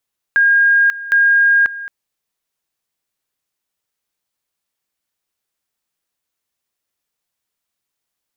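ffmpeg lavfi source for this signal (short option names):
-f lavfi -i "aevalsrc='pow(10,(-8.5-16.5*gte(mod(t,0.76),0.54))/20)*sin(2*PI*1620*t)':d=1.52:s=44100"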